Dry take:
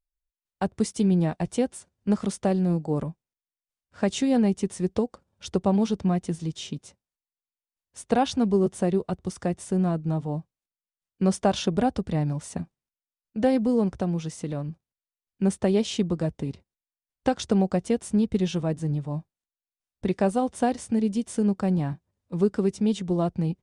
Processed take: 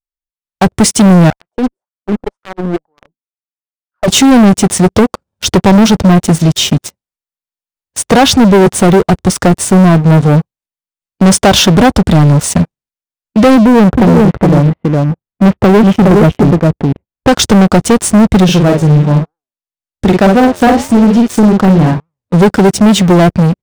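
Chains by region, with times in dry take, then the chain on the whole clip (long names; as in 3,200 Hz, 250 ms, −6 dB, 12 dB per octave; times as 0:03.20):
0:01.30–0:04.08: LFO wah 2 Hz 240–1,400 Hz, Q 6.1 + tube saturation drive 32 dB, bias 0.75 + expander for the loud parts, over −48 dBFS
0:13.56–0:17.29: Gaussian smoothing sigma 4.4 samples + single-tap delay 414 ms −5 dB
0:18.44–0:22.34: double-tracking delay 47 ms −5 dB + treble cut that deepens with the level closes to 2,300 Hz, closed at −17.5 dBFS + flanger 1.1 Hz, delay 5.7 ms, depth 8.2 ms, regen +88%
whole clip: leveller curve on the samples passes 5; automatic gain control gain up to 10.5 dB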